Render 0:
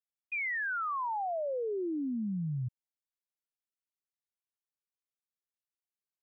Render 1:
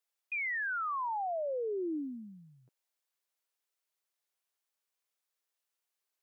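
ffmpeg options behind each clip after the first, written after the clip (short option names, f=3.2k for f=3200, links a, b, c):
-af "highpass=f=390:w=0.5412,highpass=f=390:w=1.3066,alimiter=level_in=15.5dB:limit=-24dB:level=0:latency=1,volume=-15.5dB,volume=8dB"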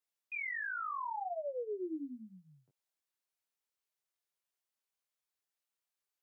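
-af "flanger=delay=20:depth=5.2:speed=0.77,volume=-1.5dB"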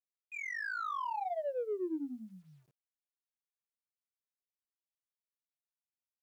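-filter_complex "[0:a]asplit=2[a][b];[b]adynamicsmooth=sensitivity=6:basefreq=730,volume=2dB[c];[a][c]amix=inputs=2:normalize=0,acrusher=bits=11:mix=0:aa=0.000001,volume=-3.5dB"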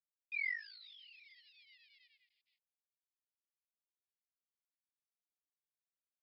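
-af "aresample=11025,aeval=exprs='sgn(val(0))*max(abs(val(0))-0.00119,0)':c=same,aresample=44100,asuperpass=centerf=3200:order=20:qfactor=0.97,volume=4.5dB"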